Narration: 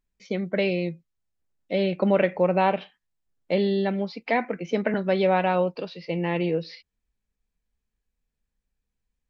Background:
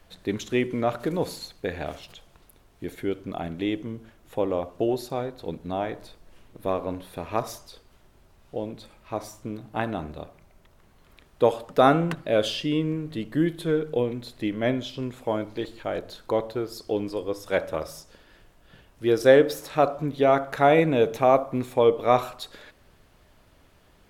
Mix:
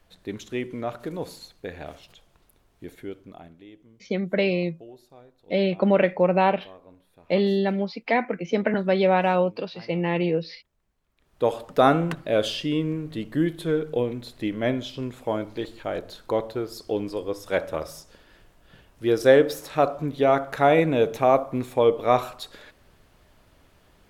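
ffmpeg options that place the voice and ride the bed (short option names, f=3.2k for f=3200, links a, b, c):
-filter_complex "[0:a]adelay=3800,volume=1.5dB[a];[1:a]volume=15dB,afade=t=out:st=2.86:d=0.78:silence=0.177828,afade=t=in:st=11.16:d=0.41:silence=0.0944061[b];[a][b]amix=inputs=2:normalize=0"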